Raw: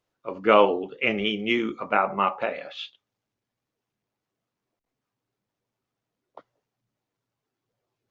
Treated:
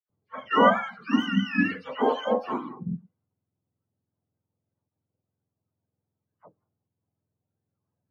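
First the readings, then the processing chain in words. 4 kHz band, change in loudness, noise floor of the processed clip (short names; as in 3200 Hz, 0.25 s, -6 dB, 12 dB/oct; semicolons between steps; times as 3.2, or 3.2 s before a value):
-4.0 dB, -2.0 dB, under -85 dBFS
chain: spectrum mirrored in octaves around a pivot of 780 Hz; dispersion lows, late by 97 ms, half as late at 1600 Hz; low-pass opened by the level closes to 870 Hz, open at -24 dBFS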